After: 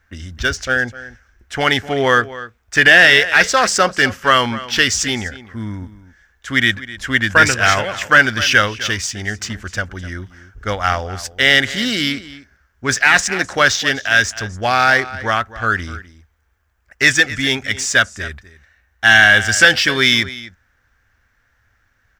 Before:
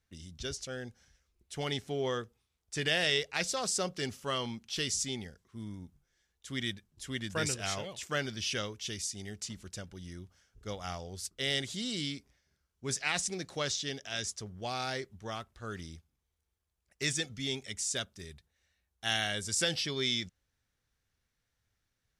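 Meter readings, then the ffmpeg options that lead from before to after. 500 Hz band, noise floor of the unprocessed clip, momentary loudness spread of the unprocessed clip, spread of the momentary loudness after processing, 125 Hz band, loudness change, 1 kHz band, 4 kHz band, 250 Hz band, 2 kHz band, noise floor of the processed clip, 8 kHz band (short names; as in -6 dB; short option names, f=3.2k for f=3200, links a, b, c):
+16.5 dB, -82 dBFS, 15 LU, 17 LU, +15.0 dB, +20.0 dB, +23.0 dB, +16.0 dB, +16.0 dB, +26.5 dB, -62 dBFS, +13.0 dB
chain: -filter_complex "[0:a]equalizer=f=160:t=o:w=0.67:g=-11,equalizer=f=400:t=o:w=0.67:g=-6,equalizer=f=1.6k:t=o:w=0.67:g=11,equalizer=f=4k:t=o:w=0.67:g=-5,equalizer=f=10k:t=o:w=0.67:g=-11,aecho=1:1:254:0.158,apsyclip=22dB,asplit=2[a][b];[b]adynamicsmooth=sensitivity=2:basefreq=2.5k,volume=-2dB[c];[a][c]amix=inputs=2:normalize=0,volume=-6.5dB"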